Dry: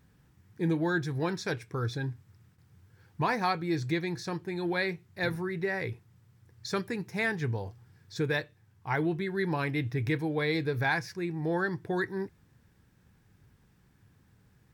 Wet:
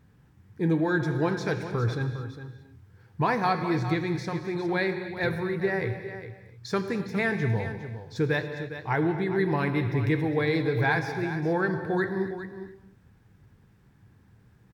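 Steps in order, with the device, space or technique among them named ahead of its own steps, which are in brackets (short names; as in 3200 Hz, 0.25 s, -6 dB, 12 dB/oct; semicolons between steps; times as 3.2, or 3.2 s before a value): behind a face mask (high shelf 2800 Hz -8 dB); echo 0.408 s -11.5 dB; non-linear reverb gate 0.31 s flat, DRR 8 dB; gain +4 dB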